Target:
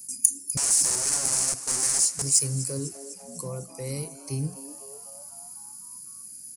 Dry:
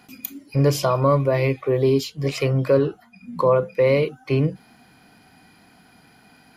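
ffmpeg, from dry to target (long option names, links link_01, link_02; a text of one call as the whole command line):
ffmpeg -i in.wav -filter_complex "[0:a]firequalizer=gain_entry='entry(150,0);entry(620,-17);entry(8700,10)':delay=0.05:min_phase=1,asettb=1/sr,asplit=3[link_01][link_02][link_03];[link_01]atrim=end=0.574[link_04];[link_02]atrim=start=0.57:end=2.22,asetpts=PTS-STARTPTS,afade=type=in:duration=0.004:curve=qsin,afade=type=out:start_time=1.646:duration=0.004:curve=qsin,aeval=exprs='(mod(18.8*val(0)+1,2)-1)/18.8':channel_layout=same[link_05];[link_03]atrim=start=2.216[link_06];[link_04][link_05]acrossfade=duration=0.004:curve1=hsin:curve2=qsin[link_07];[link_07][link_06]acrossfade=duration=0.004:curve1=qsin:curve2=hsin,aresample=22050,aresample=44100,asplit=2[link_08][link_09];[link_09]asplit=7[link_10][link_11][link_12][link_13][link_14][link_15][link_16];[link_10]adelay=250,afreqshift=140,volume=-16.5dB[link_17];[link_11]adelay=500,afreqshift=280,volume=-20.2dB[link_18];[link_12]adelay=750,afreqshift=420,volume=-24dB[link_19];[link_13]adelay=1000,afreqshift=560,volume=-27.7dB[link_20];[link_14]adelay=1250,afreqshift=700,volume=-31.5dB[link_21];[link_15]adelay=1500,afreqshift=840,volume=-35.2dB[link_22];[link_16]adelay=1750,afreqshift=980,volume=-39dB[link_23];[link_17][link_18][link_19][link_20][link_21][link_22][link_23]amix=inputs=7:normalize=0[link_24];[link_08][link_24]amix=inputs=2:normalize=0,aexciter=amount=9.8:drive=9.2:freq=5300,volume=-8dB" out.wav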